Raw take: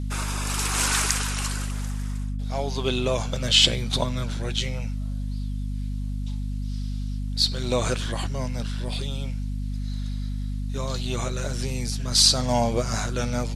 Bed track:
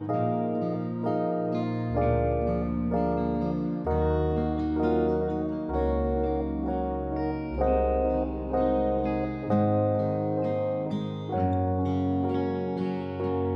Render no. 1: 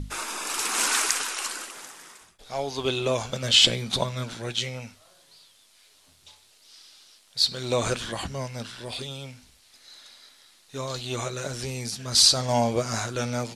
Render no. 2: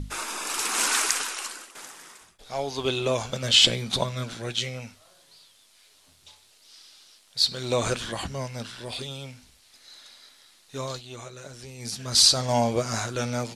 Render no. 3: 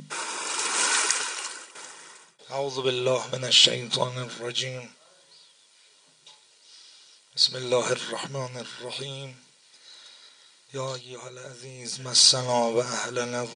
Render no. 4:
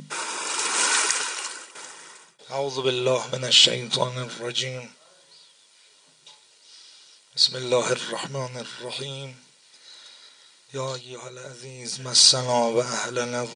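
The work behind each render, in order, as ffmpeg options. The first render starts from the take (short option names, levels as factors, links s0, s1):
-af "bandreject=f=50:t=h:w=6,bandreject=f=100:t=h:w=6,bandreject=f=150:t=h:w=6,bandreject=f=200:t=h:w=6,bandreject=f=250:t=h:w=6"
-filter_complex "[0:a]asettb=1/sr,asplit=3[s0][s1][s2];[s0]atrim=end=4.064[s3];[s1]atrim=start=4.06:end=4.82,asetpts=PTS-STARTPTS,afade=t=in:d=0.004:c=qsin,afade=t=out:st=0.756:d=0.004:c=qsin,bandreject=f=900:w=12[s4];[s2]atrim=start=4.816[s5];[s3][s4]acrossfade=d=0.004:c1=hsin:c2=qsin[s6];[s6][s5]acrossfade=d=0.004:c1=qsin:c2=hsin,asplit=4[s7][s8][s9][s10];[s7]atrim=end=1.75,asetpts=PTS-STARTPTS,afade=t=out:st=1.2:d=0.55:silence=0.298538[s11];[s8]atrim=start=1.75:end=11.02,asetpts=PTS-STARTPTS,afade=t=in:d=0.004:c=hsin:silence=0.298538,afade=t=out:st=9.1:d=0.17:c=qsin:silence=0.316228[s12];[s9]atrim=start=11.02:end=11.78,asetpts=PTS-STARTPTS,volume=0.316[s13];[s10]atrim=start=11.78,asetpts=PTS-STARTPTS,afade=t=in:d=0.17:c=qsin:silence=0.316228[s14];[s11][s12][s13][s14]concat=n=4:v=0:a=1"
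-af "aecho=1:1:2.1:0.4,afftfilt=real='re*between(b*sr/4096,120,10000)':imag='im*between(b*sr/4096,120,10000)':win_size=4096:overlap=0.75"
-af "volume=1.26,alimiter=limit=0.794:level=0:latency=1"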